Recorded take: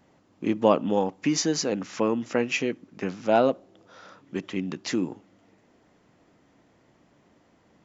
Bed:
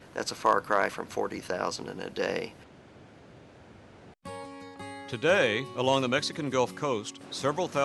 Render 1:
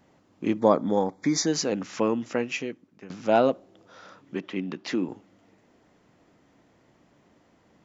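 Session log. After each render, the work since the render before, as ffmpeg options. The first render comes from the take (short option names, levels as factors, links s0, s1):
-filter_complex "[0:a]asettb=1/sr,asplit=3[s0][s1][s2];[s0]atrim=end=0.594[s3];[s1]atrim=start=0.59:end=1.47,asetpts=PTS-STARTPTS,afade=t=in:d=0.004:c=qsin,afade=t=out:st=0.876:d=0.004:c=qsin,asuperstop=centerf=2800:order=8:qfactor=2.9[s4];[s2]atrim=start=1.466[s5];[s3][s4]acrossfade=d=0.004:c1=hsin:c2=qsin[s6];[s6][s5]acrossfade=d=0.004:c1=qsin:c2=hsin,asettb=1/sr,asplit=3[s7][s8][s9];[s7]atrim=end=4.354[s10];[s8]atrim=start=4.35:end=5.09,asetpts=PTS-STARTPTS,afade=t=in:d=0.004:c=qsin,afade=t=out:st=0.736:d=0.004:c=qsin,highpass=170,lowpass=4300[s11];[s9]atrim=start=5.086[s12];[s10][s11]acrossfade=d=0.004:c1=hsin:c2=qsin[s13];[s13][s12]acrossfade=d=0.004:c1=qsin:c2=hsin,asplit=2[s14][s15];[s14]atrim=end=3.1,asetpts=PTS-STARTPTS,afade=t=out:st=2.1:d=1:silence=0.141254[s16];[s15]atrim=start=3.1,asetpts=PTS-STARTPTS,afade=t=in:d=0.004:c=hsin:silence=0.141254[s17];[s16][s17]concat=n=2:v=0:a=1"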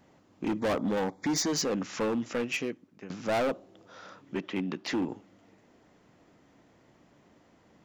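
-af "volume=17.8,asoftclip=hard,volume=0.0562"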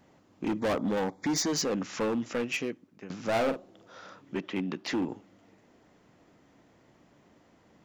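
-filter_complex "[0:a]asettb=1/sr,asplit=3[s0][s1][s2];[s0]atrim=end=3.194[s3];[s1]atrim=start=3.19:end=4,asetpts=PTS-STARTPTS,afade=t=in:d=0.004:c=qsin,afade=t=out:st=0.806:d=0.004:c=qsin,asplit=2[s4][s5];[s5]adelay=45,volume=0.355[s6];[s4][s6]amix=inputs=2:normalize=0,atrim=end_sample=35721[s7];[s2]atrim=start=3.996[s8];[s3][s7]acrossfade=d=0.004:c1=hsin:c2=qsin[s9];[s9][s8]acrossfade=d=0.004:c1=qsin:c2=hsin"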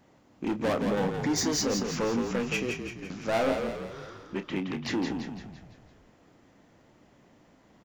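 -filter_complex "[0:a]asplit=2[s0][s1];[s1]adelay=30,volume=0.282[s2];[s0][s2]amix=inputs=2:normalize=0,asplit=7[s3][s4][s5][s6][s7][s8][s9];[s4]adelay=169,afreqshift=-40,volume=0.531[s10];[s5]adelay=338,afreqshift=-80,volume=0.272[s11];[s6]adelay=507,afreqshift=-120,volume=0.138[s12];[s7]adelay=676,afreqshift=-160,volume=0.0708[s13];[s8]adelay=845,afreqshift=-200,volume=0.0359[s14];[s9]adelay=1014,afreqshift=-240,volume=0.0184[s15];[s3][s10][s11][s12][s13][s14][s15]amix=inputs=7:normalize=0"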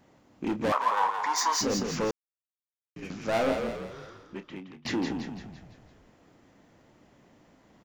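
-filter_complex "[0:a]asettb=1/sr,asplit=3[s0][s1][s2];[s0]atrim=end=0.724[s3];[s1]atrim=start=0.72:end=1.61,asetpts=PTS-STARTPTS,afade=t=in:d=0.004:c=qsin,afade=t=out:st=0.886:d=0.004:c=qsin,highpass=f=1000:t=q:w=11[s4];[s2]atrim=start=1.606[s5];[s3][s4]acrossfade=d=0.004:c1=hsin:c2=qsin[s6];[s6][s5]acrossfade=d=0.004:c1=qsin:c2=hsin,asplit=4[s7][s8][s9][s10];[s7]atrim=end=2.11,asetpts=PTS-STARTPTS,afade=t=out:st=2.106:d=0.004:c=hsin[s11];[s8]atrim=start=2.11:end=2.96,asetpts=PTS-STARTPTS,volume=0[s12];[s9]atrim=start=2.96:end=4.85,asetpts=PTS-STARTPTS,afade=t=in:d=0.004:c=hsin,afade=t=out:st=0.78:d=1.11:silence=0.0944061[s13];[s10]atrim=start=4.85,asetpts=PTS-STARTPTS,afade=t=in:d=0.004:c=hsin:silence=0.0944061[s14];[s11][s12][s13][s14]concat=n=4:v=0:a=1"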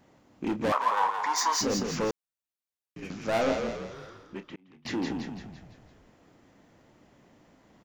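-filter_complex "[0:a]asettb=1/sr,asplit=3[s0][s1][s2];[s0]atrim=end=3.414[s3];[s1]atrim=start=3.41:end=3.94,asetpts=PTS-STARTPTS,afade=t=in:d=0.004:c=qsin,afade=t=out:st=0.526:d=0.004:c=qsin,highshelf=f=7900:t=q:w=3:g=-7.5[s4];[s2]atrim=start=3.936[s5];[s3][s4]acrossfade=d=0.004:c1=hsin:c2=qsin[s6];[s6][s5]acrossfade=d=0.004:c1=qsin:c2=hsin,asplit=2[s7][s8];[s7]atrim=end=4.56,asetpts=PTS-STARTPTS,afade=t=out:st=4.556:d=0.004:c=hsin[s9];[s8]atrim=start=4.56,asetpts=PTS-STARTPTS,afade=t=in:d=0.67:c=qsin[s10];[s9][s10]concat=n=2:v=0:a=1"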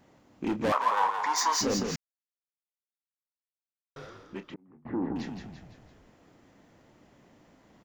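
-filter_complex "[0:a]asettb=1/sr,asplit=3[s0][s1][s2];[s0]atrim=end=4.544[s3];[s1]atrim=start=4.54:end=5.16,asetpts=PTS-STARTPTS,afade=t=in:d=0.004:c=qsin,afade=t=out:st=0.616:d=0.004:c=qsin,lowpass=f=1300:w=0.5412,lowpass=f=1300:w=1.3066[s4];[s2]atrim=start=5.156[s5];[s3][s4]acrossfade=d=0.004:c1=hsin:c2=qsin[s6];[s6][s5]acrossfade=d=0.004:c1=qsin:c2=hsin,asplit=3[s7][s8][s9];[s7]atrim=end=1.96,asetpts=PTS-STARTPTS,afade=t=out:st=1.956:d=0.004:c=hsin[s10];[s8]atrim=start=1.96:end=3.96,asetpts=PTS-STARTPTS,volume=0[s11];[s9]atrim=start=3.96,asetpts=PTS-STARTPTS,afade=t=in:d=0.004:c=hsin[s12];[s10][s11][s12]concat=n=3:v=0:a=1"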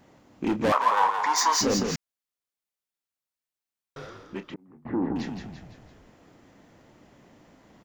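-af "volume=1.58"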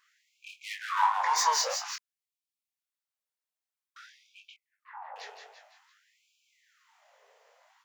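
-af "flanger=delay=18.5:depth=4.5:speed=2.7,afftfilt=real='re*gte(b*sr/1024,390*pow(2300/390,0.5+0.5*sin(2*PI*0.51*pts/sr)))':imag='im*gte(b*sr/1024,390*pow(2300/390,0.5+0.5*sin(2*PI*0.51*pts/sr)))':win_size=1024:overlap=0.75"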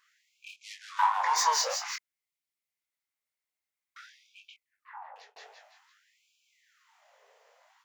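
-filter_complex "[0:a]asettb=1/sr,asplit=3[s0][s1][s2];[s0]atrim=end=0.564[s3];[s1]atrim=start=0.56:end=0.99,asetpts=PTS-STARTPTS,afade=t=in:d=0.004:c=qsin,afade=t=out:st=0.426:d=0.004:c=qsin,bandpass=f=5800:t=q:w=1.2[s4];[s2]atrim=start=0.986[s5];[s3][s4]acrossfade=d=0.004:c1=hsin:c2=qsin[s6];[s6][s5]acrossfade=d=0.004:c1=qsin:c2=hsin,asettb=1/sr,asplit=3[s7][s8][s9];[s7]atrim=end=1.824[s10];[s8]atrim=start=1.82:end=4.01,asetpts=PTS-STARTPTS,afade=t=in:d=0.004:c=qsin,afade=t=out:st=2.186:d=0.004:c=qsin,equalizer=f=2100:t=o:w=0.27:g=10.5[s11];[s9]atrim=start=4.006[s12];[s10][s11]acrossfade=d=0.004:c1=hsin:c2=qsin[s13];[s13][s12]acrossfade=d=0.004:c1=qsin:c2=hsin,asplit=2[s14][s15];[s14]atrim=end=5.36,asetpts=PTS-STARTPTS,afade=t=out:st=4.96:d=0.4[s16];[s15]atrim=start=5.36,asetpts=PTS-STARTPTS,afade=t=in:d=0.004:c=hsin[s17];[s16][s17]concat=n=2:v=0:a=1"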